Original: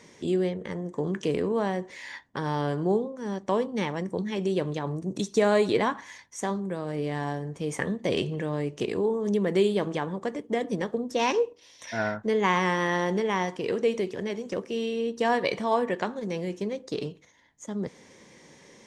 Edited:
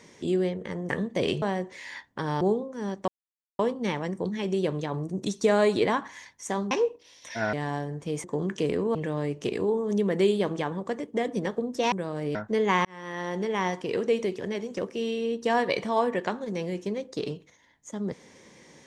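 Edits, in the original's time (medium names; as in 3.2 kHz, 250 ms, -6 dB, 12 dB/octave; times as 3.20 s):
0.89–1.60 s: swap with 7.78–8.31 s
2.59–2.85 s: delete
3.52 s: insert silence 0.51 s
6.64–7.07 s: swap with 11.28–12.10 s
12.60–13.41 s: fade in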